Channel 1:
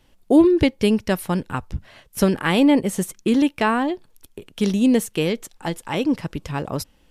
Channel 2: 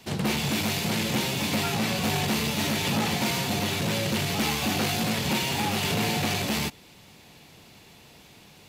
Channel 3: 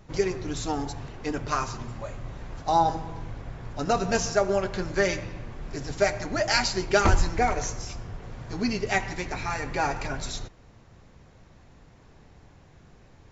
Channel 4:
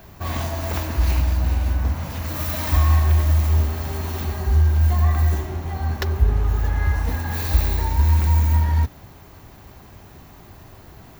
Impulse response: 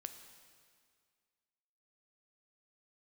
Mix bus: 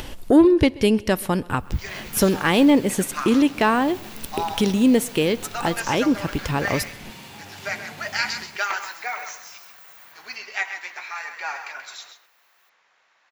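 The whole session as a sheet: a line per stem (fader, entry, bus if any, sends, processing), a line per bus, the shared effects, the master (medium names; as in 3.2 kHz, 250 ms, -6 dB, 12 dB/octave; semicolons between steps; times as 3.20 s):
+0.5 dB, 0.00 s, send -11 dB, echo send -23.5 dB, peaking EQ 170 Hz -4 dB 0.77 oct; upward compressor, threshold -19 dBFS; saturation -6.5 dBFS, distortion -24 dB
-16.5 dB, 1.75 s, no send, echo send -4.5 dB, none
-10.5 dB, 1.65 s, no send, echo send -9.5 dB, high-pass 840 Hz; peaking EQ 2 kHz +12.5 dB 3 oct
-11.5 dB, 1.50 s, no send, no echo send, steep high-pass 2.4 kHz; peak limiter -25.5 dBFS, peak gain reduction 11 dB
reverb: on, RT60 2.0 s, pre-delay 6 ms
echo: delay 132 ms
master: none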